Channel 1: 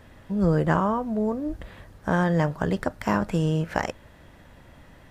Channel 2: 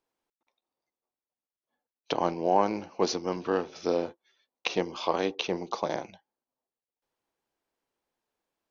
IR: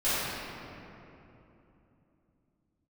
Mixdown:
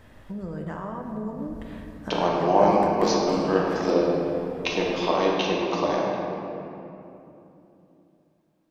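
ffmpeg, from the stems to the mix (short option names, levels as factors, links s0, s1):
-filter_complex "[0:a]acompressor=threshold=0.0282:ratio=5,volume=0.708,asplit=2[s0][s1];[s1]volume=0.188[s2];[1:a]volume=0.841,asplit=2[s3][s4];[s4]volume=0.447[s5];[2:a]atrim=start_sample=2205[s6];[s2][s5]amix=inputs=2:normalize=0[s7];[s7][s6]afir=irnorm=-1:irlink=0[s8];[s0][s3][s8]amix=inputs=3:normalize=0"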